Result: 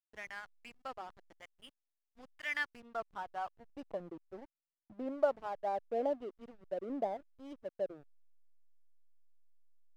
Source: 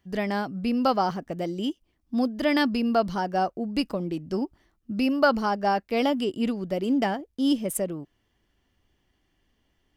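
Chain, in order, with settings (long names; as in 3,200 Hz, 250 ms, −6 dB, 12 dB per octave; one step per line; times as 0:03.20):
two-band tremolo in antiphase 1 Hz, depth 70%, crossover 900 Hz
band-pass filter sweep 2,000 Hz → 610 Hz, 0:02.47–0:04.14
slack as between gear wheels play −41 dBFS
level −3.5 dB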